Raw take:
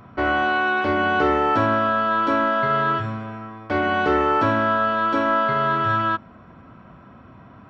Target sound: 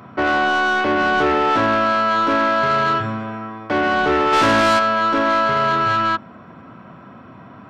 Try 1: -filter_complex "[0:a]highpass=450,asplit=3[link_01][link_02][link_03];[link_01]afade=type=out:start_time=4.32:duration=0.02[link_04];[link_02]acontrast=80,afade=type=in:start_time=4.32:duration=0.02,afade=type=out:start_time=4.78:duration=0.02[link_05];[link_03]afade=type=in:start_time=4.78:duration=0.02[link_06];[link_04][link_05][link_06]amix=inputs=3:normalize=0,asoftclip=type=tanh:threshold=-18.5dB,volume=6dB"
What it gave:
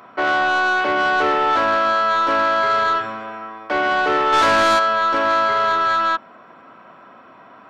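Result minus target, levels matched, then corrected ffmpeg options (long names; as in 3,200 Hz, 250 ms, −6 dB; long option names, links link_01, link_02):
125 Hz band −12.0 dB
-filter_complex "[0:a]highpass=130,asplit=3[link_01][link_02][link_03];[link_01]afade=type=out:start_time=4.32:duration=0.02[link_04];[link_02]acontrast=80,afade=type=in:start_time=4.32:duration=0.02,afade=type=out:start_time=4.78:duration=0.02[link_05];[link_03]afade=type=in:start_time=4.78:duration=0.02[link_06];[link_04][link_05][link_06]amix=inputs=3:normalize=0,asoftclip=type=tanh:threshold=-18.5dB,volume=6dB"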